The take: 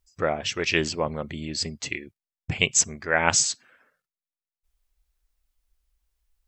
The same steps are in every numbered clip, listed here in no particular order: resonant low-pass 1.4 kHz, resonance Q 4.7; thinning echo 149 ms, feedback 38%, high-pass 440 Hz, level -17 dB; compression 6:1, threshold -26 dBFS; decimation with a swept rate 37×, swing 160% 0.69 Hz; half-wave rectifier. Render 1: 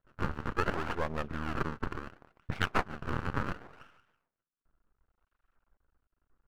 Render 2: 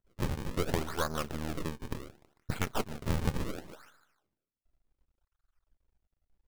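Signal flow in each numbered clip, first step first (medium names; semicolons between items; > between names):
compression > thinning echo > decimation with a swept rate > resonant low-pass > half-wave rectifier; thinning echo > half-wave rectifier > resonant low-pass > compression > decimation with a swept rate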